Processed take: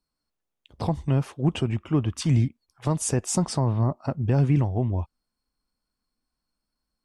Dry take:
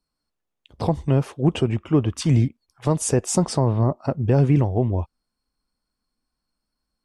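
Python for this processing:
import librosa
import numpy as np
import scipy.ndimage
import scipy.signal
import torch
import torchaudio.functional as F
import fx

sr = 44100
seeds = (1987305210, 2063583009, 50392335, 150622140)

y = fx.dynamic_eq(x, sr, hz=460.0, q=1.4, threshold_db=-34.0, ratio=4.0, max_db=-6)
y = y * librosa.db_to_amplitude(-2.5)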